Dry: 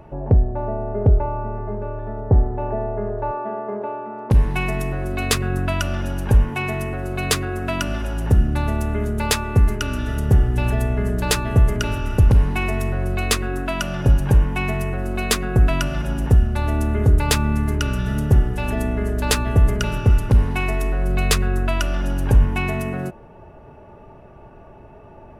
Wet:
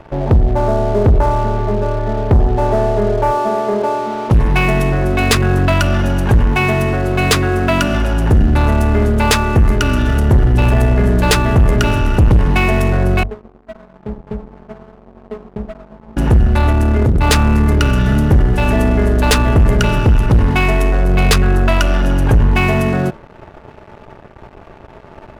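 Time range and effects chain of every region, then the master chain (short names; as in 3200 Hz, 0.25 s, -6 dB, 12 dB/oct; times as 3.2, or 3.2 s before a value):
13.23–16.17 steep low-pass 980 Hz 72 dB/oct + metallic resonator 210 Hz, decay 0.34 s, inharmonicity 0.002
16.71–17.22 notches 50/100/150/200/250/300/350/400/450 Hz + core saturation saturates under 230 Hz
whole clip: high shelf 6800 Hz -9 dB; notches 50/100/150 Hz; sample leveller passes 3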